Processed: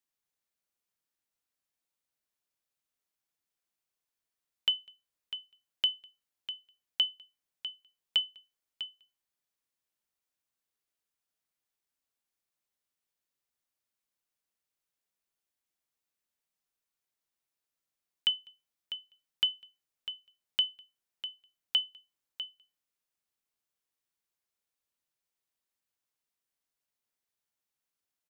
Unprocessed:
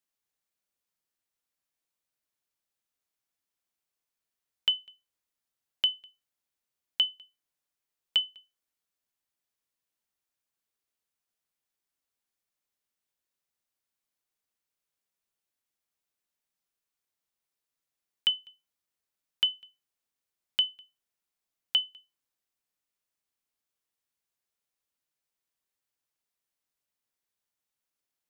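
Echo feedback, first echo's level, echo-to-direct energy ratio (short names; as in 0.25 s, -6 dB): no steady repeat, -11.5 dB, -11.5 dB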